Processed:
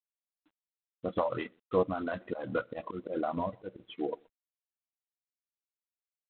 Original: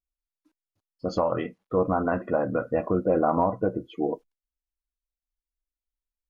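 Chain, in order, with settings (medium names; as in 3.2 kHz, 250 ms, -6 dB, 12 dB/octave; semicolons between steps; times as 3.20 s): on a send: delay 125 ms -20 dB; on the sum: reverb removal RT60 1.8 s; rotary cabinet horn 5.5 Hz, later 0.7 Hz, at 1.15 s; 2.27–3.80 s: slow attack 129 ms; tilt EQ +1.5 dB/octave; trim -1 dB; G.726 24 kbps 8 kHz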